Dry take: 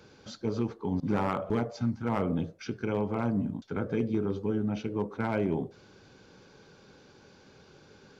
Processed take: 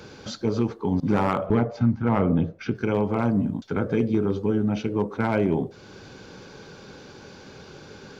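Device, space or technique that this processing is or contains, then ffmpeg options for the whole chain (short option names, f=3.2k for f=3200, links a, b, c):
parallel compression: -filter_complex "[0:a]asplit=2[a][b];[b]acompressor=threshold=-46dB:ratio=6,volume=0dB[c];[a][c]amix=inputs=2:normalize=0,asettb=1/sr,asplit=3[d][e][f];[d]atrim=end=1.464[g];[e]atrim=start=1.46:end=2.75,asetpts=PTS-STARTPTS,afade=t=in:d=0.004:c=qsin,afade=t=out:st=1.286:d=0.004:c=qsin,bass=f=250:g=3,treble=f=4k:g=-14[h];[f]atrim=start=2.746[i];[g][h]acrossfade=d=0.004:c1=hsin:c2=qsin[j];[j][i]acrossfade=d=0.004:c1=qsin:c2=hsin,volume=5.5dB"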